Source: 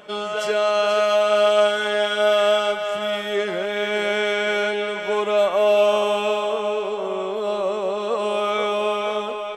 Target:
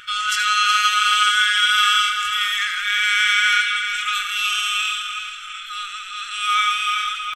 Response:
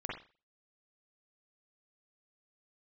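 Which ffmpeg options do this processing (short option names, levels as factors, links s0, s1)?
-filter_complex "[0:a]atempo=1.3,bandreject=f=47.16:t=h:w=4,bandreject=f=94.32:t=h:w=4,bandreject=f=141.48:t=h:w=4,areverse,acompressor=mode=upward:threshold=0.0562:ratio=2.5,areverse,afftfilt=real='re*(1-between(b*sr/4096,120,1200))':imag='im*(1-between(b*sr/4096,120,1200))':win_size=4096:overlap=0.75,asplit=2[s0][s1];[s1]aecho=0:1:80|160|240:0.335|0.104|0.0322[s2];[s0][s2]amix=inputs=2:normalize=0,adynamicequalizer=threshold=0.0126:dfrequency=4200:dqfactor=0.7:tfrequency=4200:tqfactor=0.7:attack=5:release=100:ratio=0.375:range=2.5:mode=boostabove:tftype=highshelf,volume=2.51"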